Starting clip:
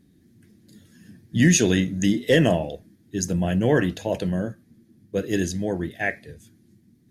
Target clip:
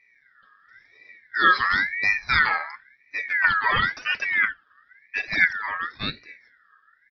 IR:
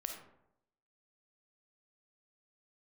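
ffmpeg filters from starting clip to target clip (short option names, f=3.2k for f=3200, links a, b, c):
-filter_complex "[0:a]equalizer=f=560:t=o:w=0.77:g=-6,aecho=1:1:5.9:0.46,asettb=1/sr,asplit=3[a][b][c];[a]atrim=end=3.444[d];[b]atrim=start=3.44:end=5.69,asetpts=PTS-STARTPTS,afade=t=in:d=0.004:c=qsin,afade=t=out:st=2.246:d=0.004:c=qsin,aphaser=in_gain=1:out_gain=1:delay=4.6:decay=0.72:speed=1:type=triangular[e];[c]atrim=start=5.686[f];[d][e]acrossfade=d=0.004:c1=hsin:c2=qsin[g];[g][f]acrossfade=d=0.004:c1=qsin:c2=hsin,aresample=8000,aresample=44100,aeval=exprs='val(0)*sin(2*PI*1800*n/s+1800*0.2/0.96*sin(2*PI*0.96*n/s))':c=same"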